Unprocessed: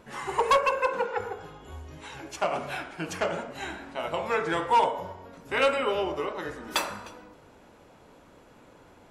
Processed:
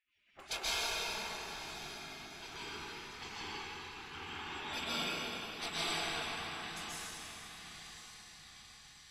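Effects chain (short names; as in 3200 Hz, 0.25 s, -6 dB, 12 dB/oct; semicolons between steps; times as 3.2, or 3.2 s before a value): per-bin compression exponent 0.6; spectral noise reduction 20 dB; low-pass opened by the level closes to 1200 Hz, open at -18.5 dBFS; on a send: diffused feedback echo 1.028 s, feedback 57%, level -11.5 dB; on the sum: spectral gate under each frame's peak -25 dB weak; plate-style reverb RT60 4 s, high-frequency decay 0.75×, pre-delay 0.115 s, DRR -10 dB; gain -5 dB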